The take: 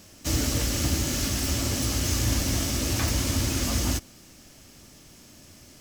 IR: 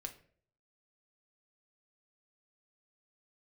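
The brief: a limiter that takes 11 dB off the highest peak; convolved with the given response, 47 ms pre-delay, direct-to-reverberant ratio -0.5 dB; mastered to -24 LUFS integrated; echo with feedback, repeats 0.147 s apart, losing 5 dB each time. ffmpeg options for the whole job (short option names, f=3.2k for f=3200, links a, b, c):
-filter_complex "[0:a]alimiter=limit=-24dB:level=0:latency=1,aecho=1:1:147|294|441|588|735|882|1029:0.562|0.315|0.176|0.0988|0.0553|0.031|0.0173,asplit=2[a][b];[1:a]atrim=start_sample=2205,adelay=47[c];[b][c]afir=irnorm=-1:irlink=0,volume=3.5dB[d];[a][d]amix=inputs=2:normalize=0,volume=4dB"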